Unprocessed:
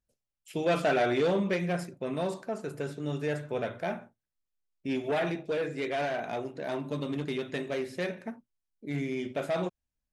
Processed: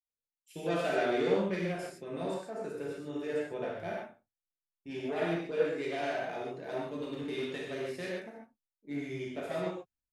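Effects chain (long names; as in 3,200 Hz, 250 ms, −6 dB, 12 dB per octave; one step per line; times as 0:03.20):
downward compressor 2 to 1, threshold −32 dBFS, peak gain reduction 6 dB
reverb whose tail is shaped and stops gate 170 ms flat, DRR −3.5 dB
multiband upward and downward expander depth 70%
level −5.5 dB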